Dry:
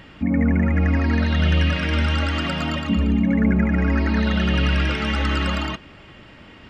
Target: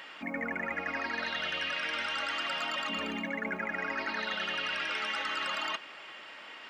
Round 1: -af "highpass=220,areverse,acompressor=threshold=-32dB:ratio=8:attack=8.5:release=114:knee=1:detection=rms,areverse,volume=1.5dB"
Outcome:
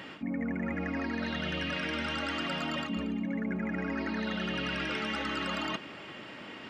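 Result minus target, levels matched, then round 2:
250 Hz band +10.0 dB
-af "highpass=750,areverse,acompressor=threshold=-32dB:ratio=8:attack=8.5:release=114:knee=1:detection=rms,areverse,volume=1.5dB"

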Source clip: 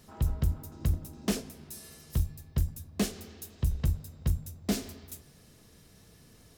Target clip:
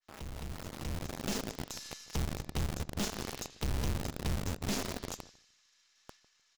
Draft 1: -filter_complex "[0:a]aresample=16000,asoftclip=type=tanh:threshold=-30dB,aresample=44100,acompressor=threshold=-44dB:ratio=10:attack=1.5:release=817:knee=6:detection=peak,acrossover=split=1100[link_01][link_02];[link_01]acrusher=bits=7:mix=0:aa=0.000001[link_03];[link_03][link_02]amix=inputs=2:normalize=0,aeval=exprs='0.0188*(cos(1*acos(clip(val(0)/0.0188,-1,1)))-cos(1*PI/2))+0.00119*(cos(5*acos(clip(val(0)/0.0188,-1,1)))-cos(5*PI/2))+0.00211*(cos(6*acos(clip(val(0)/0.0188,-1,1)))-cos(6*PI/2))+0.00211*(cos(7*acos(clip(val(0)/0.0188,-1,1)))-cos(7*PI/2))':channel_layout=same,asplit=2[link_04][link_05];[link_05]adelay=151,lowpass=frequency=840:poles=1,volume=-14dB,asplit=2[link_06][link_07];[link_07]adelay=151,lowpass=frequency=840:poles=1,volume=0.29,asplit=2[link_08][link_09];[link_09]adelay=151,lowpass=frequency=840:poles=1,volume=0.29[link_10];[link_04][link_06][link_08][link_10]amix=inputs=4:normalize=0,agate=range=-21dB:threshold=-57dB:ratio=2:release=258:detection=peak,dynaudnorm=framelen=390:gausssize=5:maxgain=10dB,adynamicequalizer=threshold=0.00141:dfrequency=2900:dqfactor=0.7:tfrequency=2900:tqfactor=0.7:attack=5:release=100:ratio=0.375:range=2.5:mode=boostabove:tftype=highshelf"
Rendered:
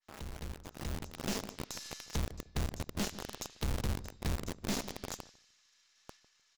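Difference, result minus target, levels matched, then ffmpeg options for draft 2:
soft clipping: distortion −4 dB
-filter_complex "[0:a]aresample=16000,asoftclip=type=tanh:threshold=-36dB,aresample=44100,acompressor=threshold=-44dB:ratio=10:attack=1.5:release=817:knee=6:detection=peak,acrossover=split=1100[link_01][link_02];[link_01]acrusher=bits=7:mix=0:aa=0.000001[link_03];[link_03][link_02]amix=inputs=2:normalize=0,aeval=exprs='0.0188*(cos(1*acos(clip(val(0)/0.0188,-1,1)))-cos(1*PI/2))+0.00119*(cos(5*acos(clip(val(0)/0.0188,-1,1)))-cos(5*PI/2))+0.00211*(cos(6*acos(clip(val(0)/0.0188,-1,1)))-cos(6*PI/2))+0.00211*(cos(7*acos(clip(val(0)/0.0188,-1,1)))-cos(7*PI/2))':channel_layout=same,asplit=2[link_04][link_05];[link_05]adelay=151,lowpass=frequency=840:poles=1,volume=-14dB,asplit=2[link_06][link_07];[link_07]adelay=151,lowpass=frequency=840:poles=1,volume=0.29,asplit=2[link_08][link_09];[link_09]adelay=151,lowpass=frequency=840:poles=1,volume=0.29[link_10];[link_04][link_06][link_08][link_10]amix=inputs=4:normalize=0,agate=range=-21dB:threshold=-57dB:ratio=2:release=258:detection=peak,dynaudnorm=framelen=390:gausssize=5:maxgain=10dB,adynamicequalizer=threshold=0.00141:dfrequency=2900:dqfactor=0.7:tfrequency=2900:tqfactor=0.7:attack=5:release=100:ratio=0.375:range=2.5:mode=boostabove:tftype=highshelf"

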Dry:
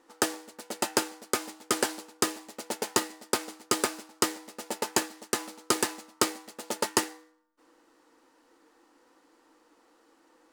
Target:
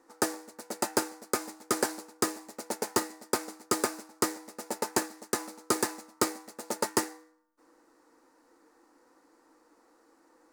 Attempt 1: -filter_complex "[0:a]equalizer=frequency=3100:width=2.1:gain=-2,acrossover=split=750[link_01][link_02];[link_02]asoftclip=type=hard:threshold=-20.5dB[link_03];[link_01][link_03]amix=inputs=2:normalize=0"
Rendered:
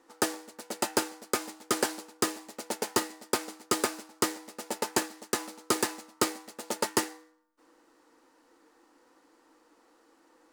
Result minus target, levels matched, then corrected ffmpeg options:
4,000 Hz band +2.5 dB
-filter_complex "[0:a]equalizer=frequency=3100:width=2.1:gain=-11.5,acrossover=split=750[link_01][link_02];[link_02]asoftclip=type=hard:threshold=-20.5dB[link_03];[link_01][link_03]amix=inputs=2:normalize=0"

